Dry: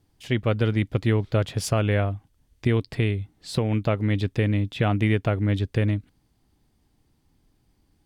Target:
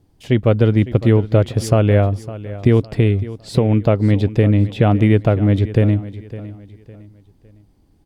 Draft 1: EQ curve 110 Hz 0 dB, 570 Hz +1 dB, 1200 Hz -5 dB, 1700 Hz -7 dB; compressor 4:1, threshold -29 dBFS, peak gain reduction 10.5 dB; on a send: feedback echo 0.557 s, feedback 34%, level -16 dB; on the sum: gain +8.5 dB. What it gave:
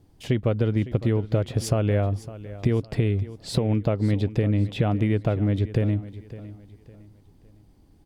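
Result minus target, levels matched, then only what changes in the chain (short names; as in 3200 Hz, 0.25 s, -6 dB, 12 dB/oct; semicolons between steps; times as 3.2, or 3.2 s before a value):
compressor: peak gain reduction +10.5 dB
remove: compressor 4:1, threshold -29 dBFS, peak gain reduction 10.5 dB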